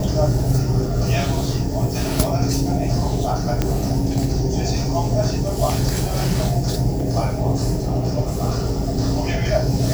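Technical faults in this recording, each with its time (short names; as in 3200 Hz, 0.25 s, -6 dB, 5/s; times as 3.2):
3.62 pop -5 dBFS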